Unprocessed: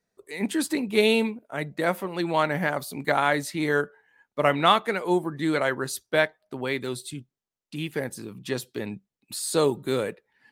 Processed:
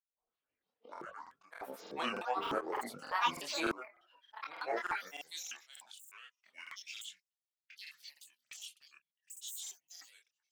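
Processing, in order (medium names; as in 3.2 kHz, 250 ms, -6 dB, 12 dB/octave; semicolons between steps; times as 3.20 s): tape start-up on the opening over 2.74 s; Doppler pass-by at 3.45 s, 6 m/s, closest 2.9 m; high-pass sweep 690 Hz -> 3.7 kHz, 4.66–5.20 s; slow attack 457 ms; granulator, pitch spread up and down by 12 st; chorus voices 6, 0.26 Hz, delay 24 ms, depth 4.1 ms; gain riding within 5 dB 0.5 s; crackling interface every 0.30 s, samples 2048, repeat, from 0.92 s; trim +5.5 dB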